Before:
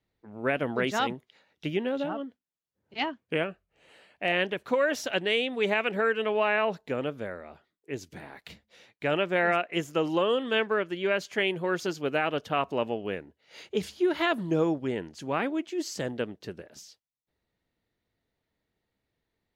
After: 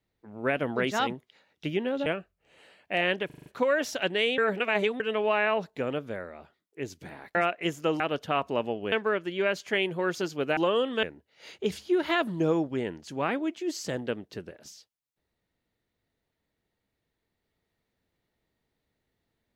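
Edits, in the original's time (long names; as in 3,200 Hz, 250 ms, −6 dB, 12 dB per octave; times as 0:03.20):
0:02.06–0:03.37: remove
0:04.57: stutter 0.04 s, 6 plays
0:05.49–0:06.11: reverse
0:08.46–0:09.46: remove
0:10.11–0:10.57: swap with 0:12.22–0:13.14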